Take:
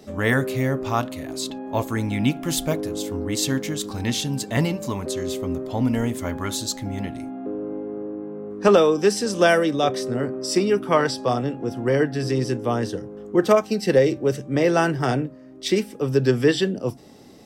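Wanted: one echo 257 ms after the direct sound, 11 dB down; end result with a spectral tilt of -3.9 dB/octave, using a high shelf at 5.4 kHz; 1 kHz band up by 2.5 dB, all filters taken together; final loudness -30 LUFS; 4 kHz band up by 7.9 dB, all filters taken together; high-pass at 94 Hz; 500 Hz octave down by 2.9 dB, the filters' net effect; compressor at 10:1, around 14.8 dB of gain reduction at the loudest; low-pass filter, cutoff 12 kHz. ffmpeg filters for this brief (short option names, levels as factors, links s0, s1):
-af "highpass=94,lowpass=12000,equalizer=f=500:t=o:g=-5,equalizer=f=1000:t=o:g=4.5,equalizer=f=4000:t=o:g=7,highshelf=f=5400:g=6,acompressor=threshold=0.0447:ratio=10,aecho=1:1:257:0.282,volume=1.12"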